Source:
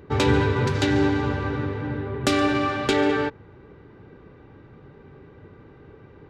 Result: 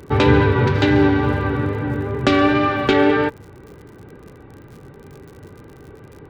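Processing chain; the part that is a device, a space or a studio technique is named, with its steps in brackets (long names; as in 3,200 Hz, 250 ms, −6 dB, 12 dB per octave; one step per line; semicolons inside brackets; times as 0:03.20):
lo-fi chain (low-pass filter 3,400 Hz 12 dB per octave; tape wow and flutter 25 cents; surface crackle 67 per second −41 dBFS)
level +6 dB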